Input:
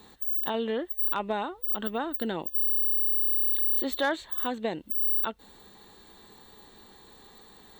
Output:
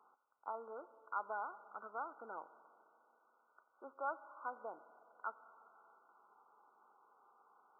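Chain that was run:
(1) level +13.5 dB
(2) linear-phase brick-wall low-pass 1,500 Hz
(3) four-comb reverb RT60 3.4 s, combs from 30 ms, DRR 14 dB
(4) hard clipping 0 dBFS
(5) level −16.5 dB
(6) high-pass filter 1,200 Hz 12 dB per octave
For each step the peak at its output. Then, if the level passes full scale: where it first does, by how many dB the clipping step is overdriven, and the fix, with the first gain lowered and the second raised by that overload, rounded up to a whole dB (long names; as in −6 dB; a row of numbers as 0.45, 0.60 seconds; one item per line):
−4.5, −4.5, −4.5, −4.5, −21.0, −27.0 dBFS
no step passes full scale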